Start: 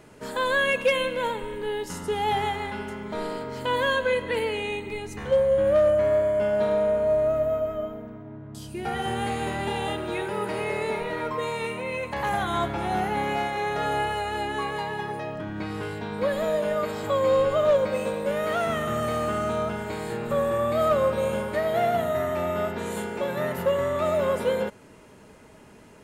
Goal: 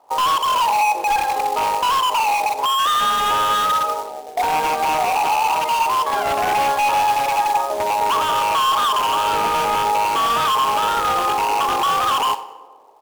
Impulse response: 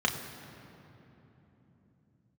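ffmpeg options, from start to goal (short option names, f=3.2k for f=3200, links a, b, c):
-filter_complex "[0:a]highpass=300,bandreject=f=50:t=h:w=6,bandreject=f=100:t=h:w=6,bandreject=f=150:t=h:w=6,bandreject=f=200:t=h:w=6,bandreject=f=250:t=h:w=6,bandreject=f=300:t=h:w=6,bandreject=f=350:t=h:w=6,bandreject=f=400:t=h:w=6,bandreject=f=450:t=h:w=6,afwtdn=0.02,lowpass=1.3k,lowshelf=f=620:t=q:w=3:g=11.5,alimiter=limit=-11.5dB:level=0:latency=1:release=124,aeval=exprs='0.15*(abs(mod(val(0)/0.15+3,4)-2)-1)':c=same,acrusher=bits=3:mode=log:mix=0:aa=0.000001,aecho=1:1:188|376|564:0.1|0.043|0.0185,asplit=2[a][b];[1:a]atrim=start_sample=2205,asetrate=74970,aresample=44100,adelay=96[c];[b][c]afir=irnorm=-1:irlink=0,volume=-19dB[d];[a][d]amix=inputs=2:normalize=0,asetrate=88200,aresample=44100,volume=2.5dB"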